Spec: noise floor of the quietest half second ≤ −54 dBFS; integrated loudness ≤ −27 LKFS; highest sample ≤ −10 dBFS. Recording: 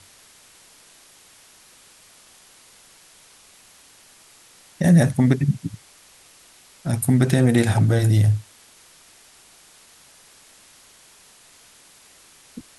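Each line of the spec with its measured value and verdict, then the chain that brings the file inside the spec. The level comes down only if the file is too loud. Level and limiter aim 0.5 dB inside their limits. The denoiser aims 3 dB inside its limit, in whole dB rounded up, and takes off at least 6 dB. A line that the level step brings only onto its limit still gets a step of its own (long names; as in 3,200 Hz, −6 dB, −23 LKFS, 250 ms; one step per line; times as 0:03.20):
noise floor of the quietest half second −51 dBFS: out of spec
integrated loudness −19.0 LKFS: out of spec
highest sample −3.5 dBFS: out of spec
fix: level −8.5 dB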